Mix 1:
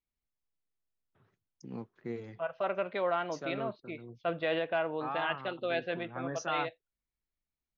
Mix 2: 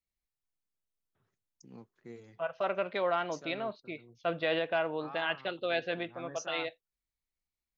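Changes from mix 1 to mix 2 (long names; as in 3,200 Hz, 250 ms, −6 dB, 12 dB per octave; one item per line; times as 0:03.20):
first voice −9.5 dB
master: remove high-frequency loss of the air 170 metres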